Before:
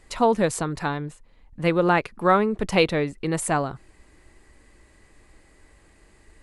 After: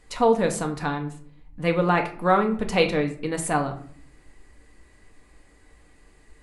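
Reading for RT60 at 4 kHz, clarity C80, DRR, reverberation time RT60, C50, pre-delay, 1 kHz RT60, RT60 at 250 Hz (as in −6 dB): 0.35 s, 15.5 dB, 3.5 dB, 0.55 s, 12.0 dB, 4 ms, 0.50 s, 0.95 s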